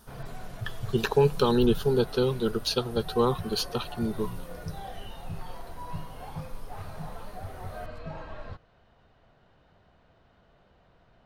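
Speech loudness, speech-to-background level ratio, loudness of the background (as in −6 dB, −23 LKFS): −27.0 LKFS, 14.5 dB, −41.5 LKFS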